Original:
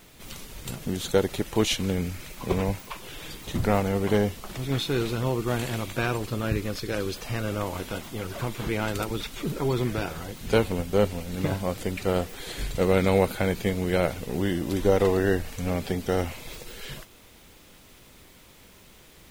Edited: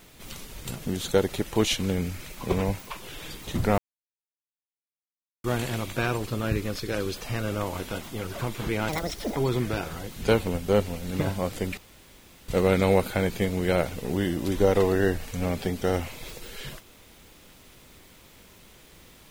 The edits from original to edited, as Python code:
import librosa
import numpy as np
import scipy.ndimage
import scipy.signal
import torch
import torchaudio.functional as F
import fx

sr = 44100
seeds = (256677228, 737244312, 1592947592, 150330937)

y = fx.edit(x, sr, fx.silence(start_s=3.78, length_s=1.66),
    fx.speed_span(start_s=8.89, length_s=0.72, speed=1.52),
    fx.room_tone_fill(start_s=12.02, length_s=0.71), tone=tone)